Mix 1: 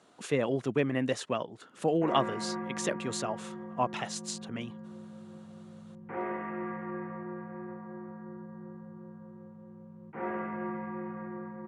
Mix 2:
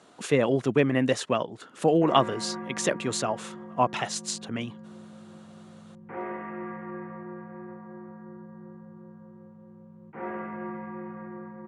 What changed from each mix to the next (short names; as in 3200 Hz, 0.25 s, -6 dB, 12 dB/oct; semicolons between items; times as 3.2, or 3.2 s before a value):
speech +6.0 dB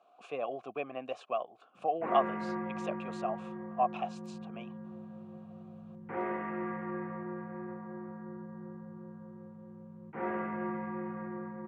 speech: add vowel filter a